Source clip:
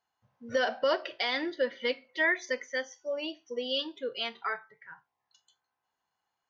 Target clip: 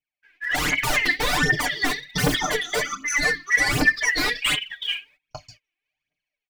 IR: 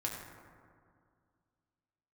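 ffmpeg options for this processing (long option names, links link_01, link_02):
-af "afftfilt=real='real(if(lt(b,272),68*(eq(floor(b/68),0)*3+eq(floor(b/68),1)*0+eq(floor(b/68),2)*1+eq(floor(b/68),3)*2)+mod(b,68),b),0)':imag='imag(if(lt(b,272),68*(eq(floor(b/68),0)*3+eq(floor(b/68),1)*0+eq(floor(b/68),2)*1+eq(floor(b/68),3)*2)+mod(b,68),b),0)':win_size=2048:overlap=0.75,aeval=exprs='0.168*sin(PI/2*8.91*val(0)/0.168)':channel_layout=same,lowpass=frequency=1200:poles=1,agate=range=-24dB:threshold=-57dB:ratio=16:detection=peak,equalizer=frequency=270:width_type=o:width=0.25:gain=7.5,dynaudnorm=framelen=270:gausssize=5:maxgain=10.5dB,alimiter=limit=-11.5dB:level=0:latency=1:release=362,aphaser=in_gain=1:out_gain=1:delay=3:decay=0.73:speed=1.3:type=triangular,aecho=1:1:6.7:0.75,volume=-6.5dB"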